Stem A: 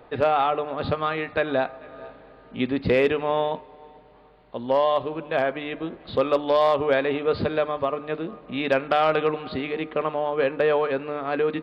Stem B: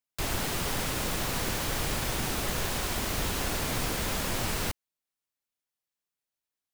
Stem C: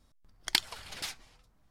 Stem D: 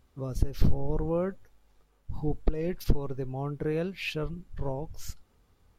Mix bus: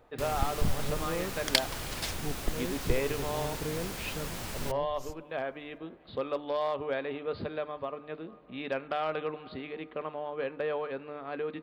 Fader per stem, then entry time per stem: −11.5, −8.0, +1.0, −6.5 decibels; 0.00, 0.00, 1.00, 0.00 seconds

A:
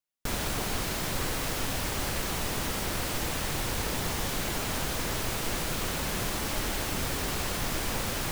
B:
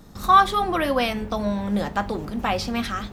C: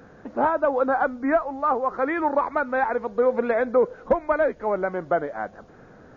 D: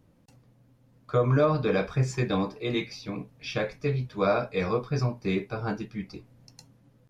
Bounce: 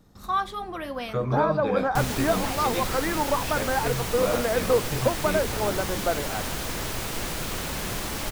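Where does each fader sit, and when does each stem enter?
+0.5, −11.0, −3.5, −4.0 decibels; 1.70, 0.00, 0.95, 0.00 seconds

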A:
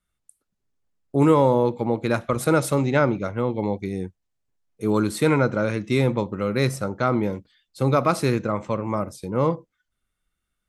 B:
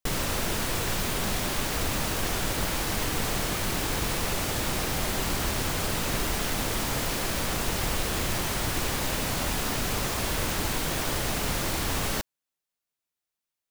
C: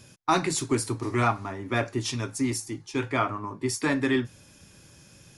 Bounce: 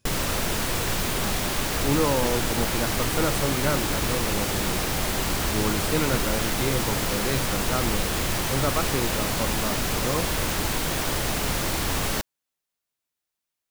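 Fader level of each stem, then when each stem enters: −7.0, +2.5, −17.0 decibels; 0.70, 0.00, 0.00 seconds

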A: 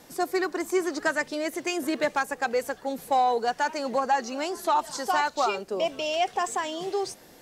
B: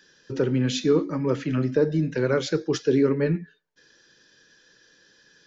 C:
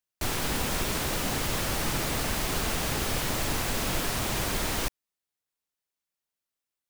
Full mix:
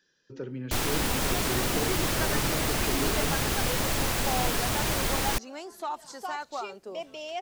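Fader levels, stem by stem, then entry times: −10.0, −13.5, +1.5 decibels; 1.15, 0.00, 0.50 seconds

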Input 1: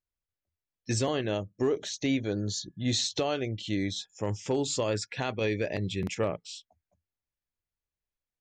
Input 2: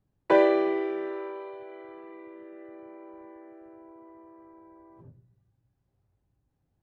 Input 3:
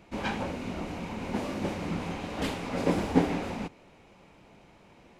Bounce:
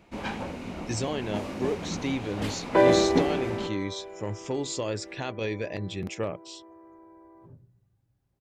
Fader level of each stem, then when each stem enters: −2.0, +0.5, −1.5 decibels; 0.00, 2.45, 0.00 seconds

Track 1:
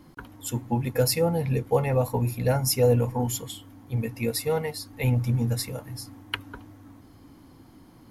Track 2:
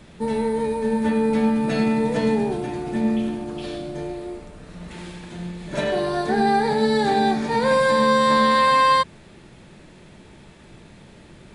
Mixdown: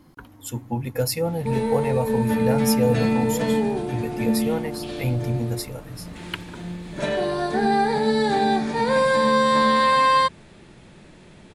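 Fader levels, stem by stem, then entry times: −1.0, −1.0 decibels; 0.00, 1.25 seconds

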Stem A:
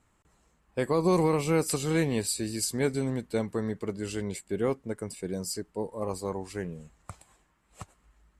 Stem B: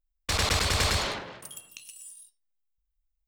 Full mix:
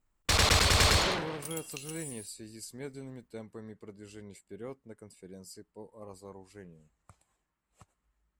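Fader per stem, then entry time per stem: −14.5, +1.5 decibels; 0.00, 0.00 seconds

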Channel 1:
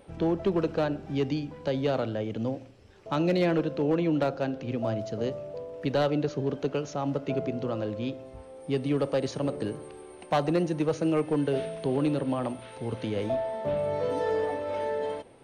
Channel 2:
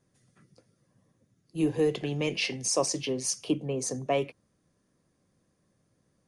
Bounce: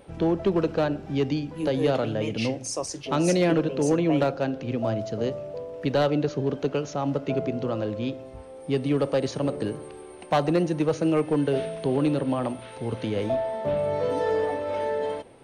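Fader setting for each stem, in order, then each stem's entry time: +3.0, −4.0 decibels; 0.00, 0.00 seconds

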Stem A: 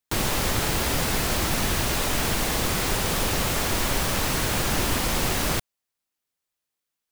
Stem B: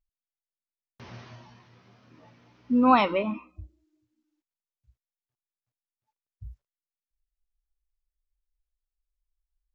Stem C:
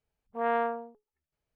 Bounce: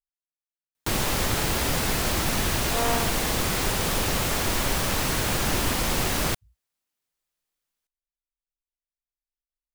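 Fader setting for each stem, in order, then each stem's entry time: −0.5, −19.0, −0.5 decibels; 0.75, 0.00, 2.35 seconds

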